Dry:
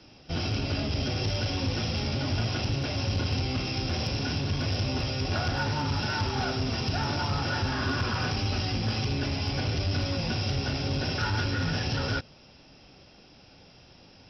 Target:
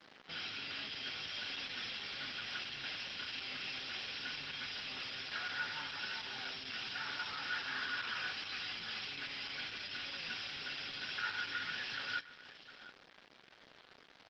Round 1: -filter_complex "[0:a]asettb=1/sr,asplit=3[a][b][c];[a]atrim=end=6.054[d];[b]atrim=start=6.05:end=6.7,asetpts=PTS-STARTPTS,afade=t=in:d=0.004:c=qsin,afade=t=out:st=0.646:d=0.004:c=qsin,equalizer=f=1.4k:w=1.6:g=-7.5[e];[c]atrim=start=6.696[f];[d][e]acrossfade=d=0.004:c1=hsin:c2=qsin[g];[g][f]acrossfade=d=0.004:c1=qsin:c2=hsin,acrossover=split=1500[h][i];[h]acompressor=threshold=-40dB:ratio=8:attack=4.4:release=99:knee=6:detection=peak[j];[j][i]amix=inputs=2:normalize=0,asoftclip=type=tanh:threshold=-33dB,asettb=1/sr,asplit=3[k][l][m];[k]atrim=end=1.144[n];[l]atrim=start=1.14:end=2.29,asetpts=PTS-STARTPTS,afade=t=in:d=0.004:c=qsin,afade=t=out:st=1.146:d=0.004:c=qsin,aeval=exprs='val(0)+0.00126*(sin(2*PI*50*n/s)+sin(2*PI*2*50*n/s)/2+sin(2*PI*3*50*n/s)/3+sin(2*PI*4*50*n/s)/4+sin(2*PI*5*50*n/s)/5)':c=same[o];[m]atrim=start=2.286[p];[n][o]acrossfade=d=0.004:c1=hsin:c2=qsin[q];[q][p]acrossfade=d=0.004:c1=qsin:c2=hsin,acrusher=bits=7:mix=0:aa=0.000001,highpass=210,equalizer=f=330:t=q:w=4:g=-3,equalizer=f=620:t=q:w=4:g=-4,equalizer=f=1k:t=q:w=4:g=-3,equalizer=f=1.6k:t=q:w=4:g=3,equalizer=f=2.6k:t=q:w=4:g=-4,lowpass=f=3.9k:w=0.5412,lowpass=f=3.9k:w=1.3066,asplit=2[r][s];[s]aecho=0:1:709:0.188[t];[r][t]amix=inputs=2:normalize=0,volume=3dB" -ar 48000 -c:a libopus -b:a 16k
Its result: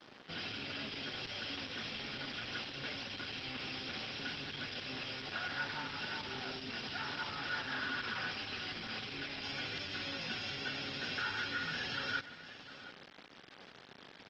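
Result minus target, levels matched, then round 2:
compressor: peak gain reduction -10 dB
-filter_complex "[0:a]asettb=1/sr,asplit=3[a][b][c];[a]atrim=end=6.054[d];[b]atrim=start=6.05:end=6.7,asetpts=PTS-STARTPTS,afade=t=in:d=0.004:c=qsin,afade=t=out:st=0.646:d=0.004:c=qsin,equalizer=f=1.4k:w=1.6:g=-7.5[e];[c]atrim=start=6.696[f];[d][e]acrossfade=d=0.004:c1=hsin:c2=qsin[g];[g][f]acrossfade=d=0.004:c1=qsin:c2=hsin,acrossover=split=1500[h][i];[h]acompressor=threshold=-51.5dB:ratio=8:attack=4.4:release=99:knee=6:detection=peak[j];[j][i]amix=inputs=2:normalize=0,asoftclip=type=tanh:threshold=-33dB,asettb=1/sr,asplit=3[k][l][m];[k]atrim=end=1.144[n];[l]atrim=start=1.14:end=2.29,asetpts=PTS-STARTPTS,afade=t=in:d=0.004:c=qsin,afade=t=out:st=1.146:d=0.004:c=qsin,aeval=exprs='val(0)+0.00126*(sin(2*PI*50*n/s)+sin(2*PI*2*50*n/s)/2+sin(2*PI*3*50*n/s)/3+sin(2*PI*4*50*n/s)/4+sin(2*PI*5*50*n/s)/5)':c=same[o];[m]atrim=start=2.286[p];[n][o]acrossfade=d=0.004:c1=hsin:c2=qsin[q];[q][p]acrossfade=d=0.004:c1=qsin:c2=hsin,acrusher=bits=7:mix=0:aa=0.000001,highpass=210,equalizer=f=330:t=q:w=4:g=-3,equalizer=f=620:t=q:w=4:g=-4,equalizer=f=1k:t=q:w=4:g=-3,equalizer=f=1.6k:t=q:w=4:g=3,equalizer=f=2.6k:t=q:w=4:g=-4,lowpass=f=3.9k:w=0.5412,lowpass=f=3.9k:w=1.3066,asplit=2[r][s];[s]aecho=0:1:709:0.188[t];[r][t]amix=inputs=2:normalize=0,volume=3dB" -ar 48000 -c:a libopus -b:a 16k

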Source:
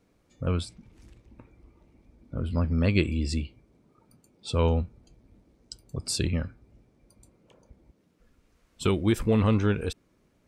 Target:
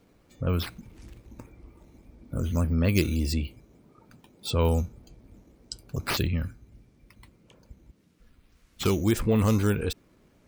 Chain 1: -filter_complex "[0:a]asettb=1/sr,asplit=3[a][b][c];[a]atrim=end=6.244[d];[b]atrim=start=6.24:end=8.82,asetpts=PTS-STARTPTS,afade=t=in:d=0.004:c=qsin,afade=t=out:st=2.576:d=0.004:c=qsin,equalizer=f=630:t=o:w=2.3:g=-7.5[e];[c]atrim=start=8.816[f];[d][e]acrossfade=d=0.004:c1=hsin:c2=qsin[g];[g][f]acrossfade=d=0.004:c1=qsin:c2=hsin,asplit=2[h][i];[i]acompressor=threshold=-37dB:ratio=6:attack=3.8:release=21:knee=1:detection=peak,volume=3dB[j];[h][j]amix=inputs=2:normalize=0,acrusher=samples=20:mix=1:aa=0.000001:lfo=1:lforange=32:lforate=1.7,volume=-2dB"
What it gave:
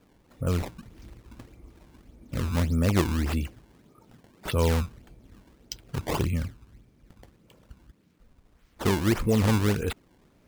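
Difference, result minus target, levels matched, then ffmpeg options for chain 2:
decimation with a swept rate: distortion +7 dB
-filter_complex "[0:a]asettb=1/sr,asplit=3[a][b][c];[a]atrim=end=6.244[d];[b]atrim=start=6.24:end=8.82,asetpts=PTS-STARTPTS,afade=t=in:d=0.004:c=qsin,afade=t=out:st=2.576:d=0.004:c=qsin,equalizer=f=630:t=o:w=2.3:g=-7.5[e];[c]atrim=start=8.816[f];[d][e]acrossfade=d=0.004:c1=hsin:c2=qsin[g];[g][f]acrossfade=d=0.004:c1=qsin:c2=hsin,asplit=2[h][i];[i]acompressor=threshold=-37dB:ratio=6:attack=3.8:release=21:knee=1:detection=peak,volume=3dB[j];[h][j]amix=inputs=2:normalize=0,acrusher=samples=4:mix=1:aa=0.000001:lfo=1:lforange=6.4:lforate=1.7,volume=-2dB"

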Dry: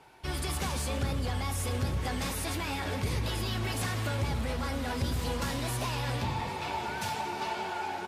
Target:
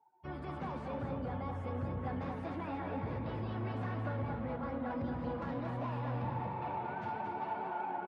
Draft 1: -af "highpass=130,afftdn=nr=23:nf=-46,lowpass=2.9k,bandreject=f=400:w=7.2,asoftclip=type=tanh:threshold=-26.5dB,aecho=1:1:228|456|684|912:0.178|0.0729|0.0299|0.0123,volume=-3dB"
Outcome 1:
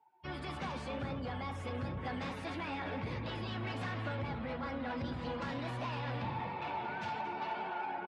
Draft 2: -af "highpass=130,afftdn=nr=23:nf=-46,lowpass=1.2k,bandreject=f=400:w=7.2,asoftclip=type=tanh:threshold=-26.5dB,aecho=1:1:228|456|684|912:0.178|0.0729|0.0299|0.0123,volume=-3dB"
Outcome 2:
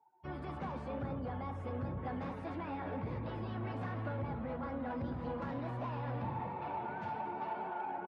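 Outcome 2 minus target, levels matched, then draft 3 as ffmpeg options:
echo-to-direct -9.5 dB
-af "highpass=130,afftdn=nr=23:nf=-46,lowpass=1.2k,bandreject=f=400:w=7.2,asoftclip=type=tanh:threshold=-26.5dB,aecho=1:1:228|456|684|912|1140:0.531|0.218|0.0892|0.0366|0.015,volume=-3dB"

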